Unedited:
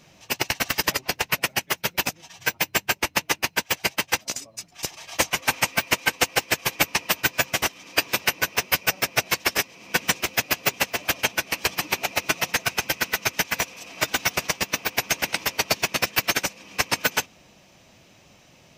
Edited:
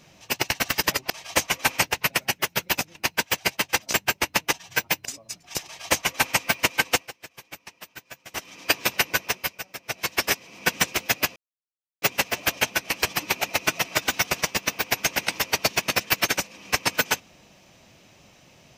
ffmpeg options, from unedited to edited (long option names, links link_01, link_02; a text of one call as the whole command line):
ffmpeg -i in.wav -filter_complex "[0:a]asplit=13[link_01][link_02][link_03][link_04][link_05][link_06][link_07][link_08][link_09][link_10][link_11][link_12][link_13];[link_01]atrim=end=1.102[link_14];[link_02]atrim=start=4.928:end=5.652[link_15];[link_03]atrim=start=1.098:end=2.232[link_16];[link_04]atrim=start=3.338:end=4.332[link_17];[link_05]atrim=start=2.748:end=3.342[link_18];[link_06]atrim=start=2.228:end=2.752[link_19];[link_07]atrim=start=4.328:end=6.42,asetpts=PTS-STARTPTS,afade=type=out:start_time=1.892:duration=0.2:curve=qua:silence=0.1[link_20];[link_08]atrim=start=6.42:end=7.54,asetpts=PTS-STARTPTS,volume=-20dB[link_21];[link_09]atrim=start=7.54:end=8.88,asetpts=PTS-STARTPTS,afade=type=in:duration=0.2:curve=qua:silence=0.1,afade=type=out:start_time=0.91:duration=0.43:silence=0.211349[link_22];[link_10]atrim=start=8.88:end=9.1,asetpts=PTS-STARTPTS,volume=-13.5dB[link_23];[link_11]atrim=start=9.1:end=10.64,asetpts=PTS-STARTPTS,afade=type=in:duration=0.43:silence=0.211349,afade=type=out:start_time=1.536:duration=0.004:curve=hsin,apad=pad_dur=0.66[link_24];[link_12]atrim=start=10.64:end=12.472,asetpts=PTS-STARTPTS,afade=type=in:duration=0.004:curve=hsin[link_25];[link_13]atrim=start=13.908[link_26];[link_14][link_15]acrossfade=duration=0.004:curve1=hsin:curve2=hsin[link_27];[link_27][link_16]acrossfade=duration=0.004:curve1=hsin:curve2=hsin[link_28];[link_28][link_17]acrossfade=duration=0.004:curve1=hsin:curve2=hsin[link_29];[link_29][link_18]acrossfade=duration=0.004:curve1=hsin:curve2=hsin[link_30];[link_30][link_19]acrossfade=duration=0.004:curve1=hsin:curve2=hsin[link_31];[link_20][link_21][link_22][link_23][link_24][link_25]concat=n=6:v=0:a=1[link_32];[link_31][link_32]acrossfade=duration=0.004:curve1=hsin:curve2=hsin[link_33];[link_33][link_26]acrossfade=duration=0.004:curve1=hsin:curve2=hsin" out.wav